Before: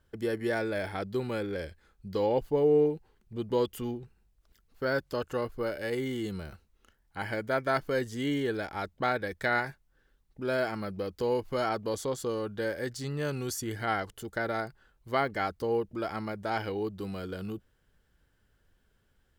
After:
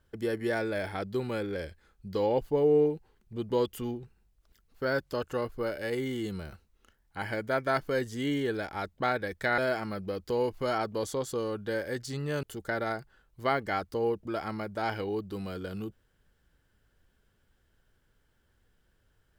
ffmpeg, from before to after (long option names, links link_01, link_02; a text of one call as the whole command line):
ffmpeg -i in.wav -filter_complex "[0:a]asplit=3[link_01][link_02][link_03];[link_01]atrim=end=9.582[link_04];[link_02]atrim=start=10.488:end=13.342[link_05];[link_03]atrim=start=14.108[link_06];[link_04][link_05]acrossfade=duration=0.004:curve1=hsin:curve2=hsin[link_07];[link_07][link_06]acrossfade=duration=0.004:curve1=hsin:curve2=hsin" out.wav